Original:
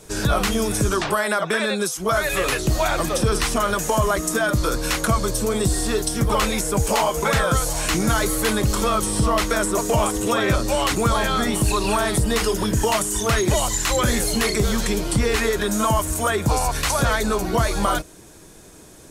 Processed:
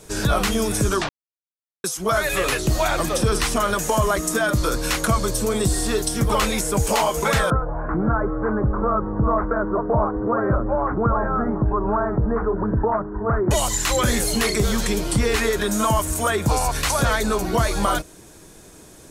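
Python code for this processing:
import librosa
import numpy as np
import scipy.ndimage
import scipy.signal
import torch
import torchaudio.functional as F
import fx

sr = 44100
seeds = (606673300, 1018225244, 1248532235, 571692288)

y = fx.steep_lowpass(x, sr, hz=1500.0, slope=48, at=(7.5, 13.51))
y = fx.edit(y, sr, fx.silence(start_s=1.09, length_s=0.75), tone=tone)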